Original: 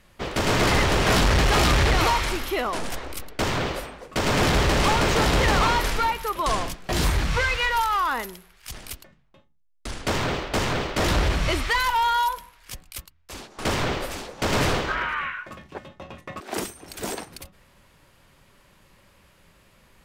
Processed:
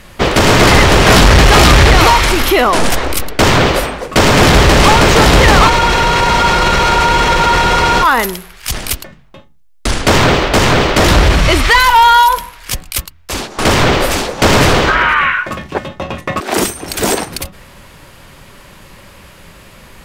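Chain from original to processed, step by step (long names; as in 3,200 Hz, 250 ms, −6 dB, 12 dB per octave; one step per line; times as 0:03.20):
frozen spectrum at 0:05.72, 2.30 s
boost into a limiter +20 dB
level −1.5 dB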